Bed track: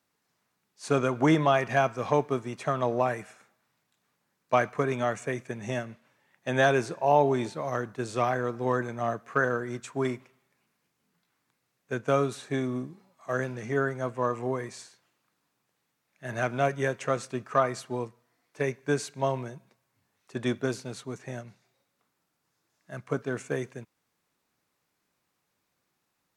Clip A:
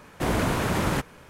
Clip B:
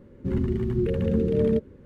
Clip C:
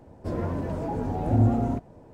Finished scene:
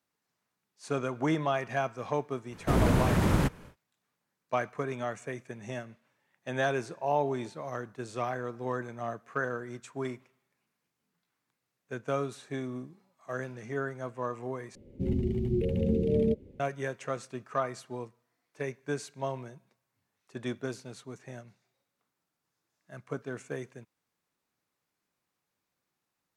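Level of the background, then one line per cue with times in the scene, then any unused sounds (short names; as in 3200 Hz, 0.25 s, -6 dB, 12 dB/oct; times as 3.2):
bed track -6.5 dB
2.47 add A -5.5 dB, fades 0.10 s + low shelf 330 Hz +9 dB
14.75 replace with B -4 dB + band shelf 1300 Hz -15.5 dB 1.1 oct
not used: C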